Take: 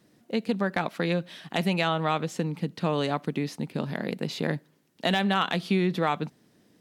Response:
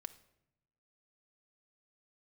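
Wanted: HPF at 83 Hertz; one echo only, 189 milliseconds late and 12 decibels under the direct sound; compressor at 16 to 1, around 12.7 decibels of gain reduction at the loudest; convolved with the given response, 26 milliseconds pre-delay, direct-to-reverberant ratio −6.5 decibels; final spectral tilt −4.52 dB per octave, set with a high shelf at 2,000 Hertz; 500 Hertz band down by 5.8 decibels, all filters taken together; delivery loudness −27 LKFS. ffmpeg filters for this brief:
-filter_complex "[0:a]highpass=83,equalizer=frequency=500:width_type=o:gain=-8,highshelf=frequency=2000:gain=5,acompressor=threshold=-33dB:ratio=16,aecho=1:1:189:0.251,asplit=2[link_01][link_02];[1:a]atrim=start_sample=2205,adelay=26[link_03];[link_02][link_03]afir=irnorm=-1:irlink=0,volume=11dB[link_04];[link_01][link_04]amix=inputs=2:normalize=0,volume=4dB"

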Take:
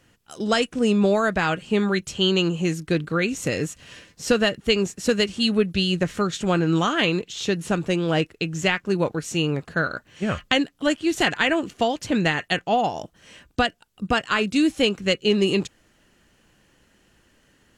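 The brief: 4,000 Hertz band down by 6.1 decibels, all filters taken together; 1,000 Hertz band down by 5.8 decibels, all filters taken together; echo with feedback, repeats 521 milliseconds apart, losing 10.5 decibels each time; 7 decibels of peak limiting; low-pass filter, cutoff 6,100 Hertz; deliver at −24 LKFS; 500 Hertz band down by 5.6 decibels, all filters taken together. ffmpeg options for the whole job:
ffmpeg -i in.wav -af "lowpass=6100,equalizer=frequency=500:width_type=o:gain=-6,equalizer=frequency=1000:width_type=o:gain=-5.5,equalizer=frequency=4000:width_type=o:gain=-8.5,alimiter=limit=-16dB:level=0:latency=1,aecho=1:1:521|1042|1563:0.299|0.0896|0.0269,volume=3dB" out.wav

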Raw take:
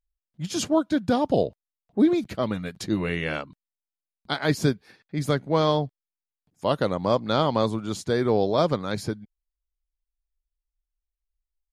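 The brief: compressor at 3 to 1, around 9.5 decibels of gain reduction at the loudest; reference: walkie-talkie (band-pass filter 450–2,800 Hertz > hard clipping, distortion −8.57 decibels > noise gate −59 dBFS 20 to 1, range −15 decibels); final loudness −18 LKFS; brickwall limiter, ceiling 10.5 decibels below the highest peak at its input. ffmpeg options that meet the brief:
ffmpeg -i in.wav -af "acompressor=threshold=-27dB:ratio=3,alimiter=limit=-23dB:level=0:latency=1,highpass=450,lowpass=2800,asoftclip=type=hard:threshold=-35.5dB,agate=range=-15dB:threshold=-59dB:ratio=20,volume=24dB" out.wav

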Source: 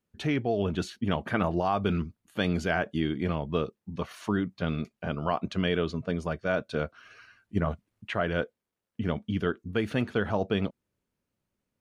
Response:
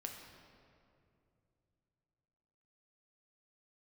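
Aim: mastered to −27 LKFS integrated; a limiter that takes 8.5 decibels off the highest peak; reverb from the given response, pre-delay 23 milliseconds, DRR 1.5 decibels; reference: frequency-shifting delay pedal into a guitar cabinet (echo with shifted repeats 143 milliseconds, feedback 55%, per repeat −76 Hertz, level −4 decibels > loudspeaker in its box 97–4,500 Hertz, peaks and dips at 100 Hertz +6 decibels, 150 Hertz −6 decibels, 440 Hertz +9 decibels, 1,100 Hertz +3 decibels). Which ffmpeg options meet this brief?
-filter_complex "[0:a]alimiter=limit=-20.5dB:level=0:latency=1,asplit=2[link_01][link_02];[1:a]atrim=start_sample=2205,adelay=23[link_03];[link_02][link_03]afir=irnorm=-1:irlink=0,volume=1dB[link_04];[link_01][link_04]amix=inputs=2:normalize=0,asplit=8[link_05][link_06][link_07][link_08][link_09][link_10][link_11][link_12];[link_06]adelay=143,afreqshift=-76,volume=-4dB[link_13];[link_07]adelay=286,afreqshift=-152,volume=-9.2dB[link_14];[link_08]adelay=429,afreqshift=-228,volume=-14.4dB[link_15];[link_09]adelay=572,afreqshift=-304,volume=-19.6dB[link_16];[link_10]adelay=715,afreqshift=-380,volume=-24.8dB[link_17];[link_11]adelay=858,afreqshift=-456,volume=-30dB[link_18];[link_12]adelay=1001,afreqshift=-532,volume=-35.2dB[link_19];[link_05][link_13][link_14][link_15][link_16][link_17][link_18][link_19]amix=inputs=8:normalize=0,highpass=97,equalizer=frequency=100:width_type=q:width=4:gain=6,equalizer=frequency=150:width_type=q:width=4:gain=-6,equalizer=frequency=440:width_type=q:width=4:gain=9,equalizer=frequency=1100:width_type=q:width=4:gain=3,lowpass=frequency=4500:width=0.5412,lowpass=frequency=4500:width=1.3066,volume=0.5dB"

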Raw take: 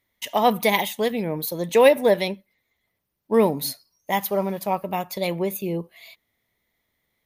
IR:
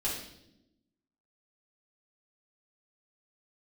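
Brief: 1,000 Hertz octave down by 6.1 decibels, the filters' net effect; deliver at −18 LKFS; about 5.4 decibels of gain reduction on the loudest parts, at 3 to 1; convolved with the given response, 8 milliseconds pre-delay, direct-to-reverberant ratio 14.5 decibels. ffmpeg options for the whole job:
-filter_complex "[0:a]equalizer=frequency=1000:width_type=o:gain=-8.5,acompressor=threshold=-20dB:ratio=3,asplit=2[link_01][link_02];[1:a]atrim=start_sample=2205,adelay=8[link_03];[link_02][link_03]afir=irnorm=-1:irlink=0,volume=-20dB[link_04];[link_01][link_04]amix=inputs=2:normalize=0,volume=8.5dB"

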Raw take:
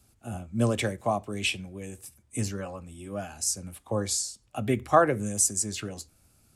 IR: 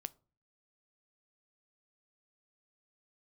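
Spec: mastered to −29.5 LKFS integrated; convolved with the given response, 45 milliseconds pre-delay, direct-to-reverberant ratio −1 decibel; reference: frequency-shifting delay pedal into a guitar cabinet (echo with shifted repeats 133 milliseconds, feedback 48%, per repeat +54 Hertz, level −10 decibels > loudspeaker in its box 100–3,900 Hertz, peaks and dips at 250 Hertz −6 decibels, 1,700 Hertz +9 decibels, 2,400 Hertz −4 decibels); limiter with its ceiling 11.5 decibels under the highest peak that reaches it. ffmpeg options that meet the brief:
-filter_complex "[0:a]alimiter=limit=-18dB:level=0:latency=1,asplit=2[link_01][link_02];[1:a]atrim=start_sample=2205,adelay=45[link_03];[link_02][link_03]afir=irnorm=-1:irlink=0,volume=4.5dB[link_04];[link_01][link_04]amix=inputs=2:normalize=0,asplit=6[link_05][link_06][link_07][link_08][link_09][link_10];[link_06]adelay=133,afreqshift=54,volume=-10dB[link_11];[link_07]adelay=266,afreqshift=108,volume=-16.4dB[link_12];[link_08]adelay=399,afreqshift=162,volume=-22.8dB[link_13];[link_09]adelay=532,afreqshift=216,volume=-29.1dB[link_14];[link_10]adelay=665,afreqshift=270,volume=-35.5dB[link_15];[link_05][link_11][link_12][link_13][link_14][link_15]amix=inputs=6:normalize=0,highpass=100,equalizer=frequency=250:width_type=q:width=4:gain=-6,equalizer=frequency=1700:width_type=q:width=4:gain=9,equalizer=frequency=2400:width_type=q:width=4:gain=-4,lowpass=frequency=3900:width=0.5412,lowpass=frequency=3900:width=1.3066,volume=0.5dB"

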